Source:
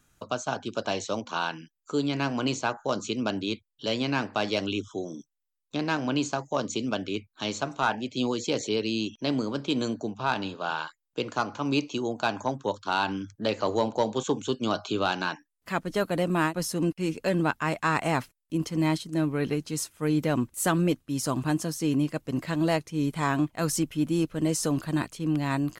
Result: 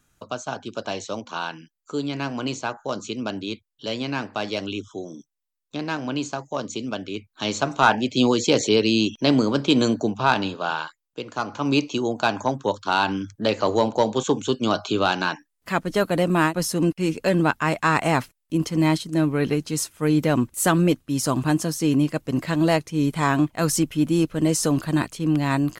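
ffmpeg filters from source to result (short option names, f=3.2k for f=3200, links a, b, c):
-af "volume=18dB,afade=t=in:st=7.15:d=0.72:silence=0.354813,afade=t=out:st=10.11:d=1.14:silence=0.237137,afade=t=in:st=11.25:d=0.43:silence=0.354813"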